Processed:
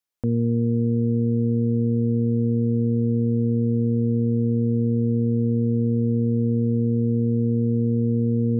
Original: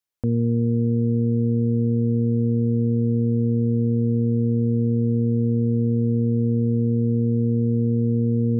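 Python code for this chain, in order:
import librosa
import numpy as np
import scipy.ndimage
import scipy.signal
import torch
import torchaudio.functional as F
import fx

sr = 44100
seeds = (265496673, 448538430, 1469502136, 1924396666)

y = fx.peak_eq(x, sr, hz=63.0, db=-6.5, octaves=0.89)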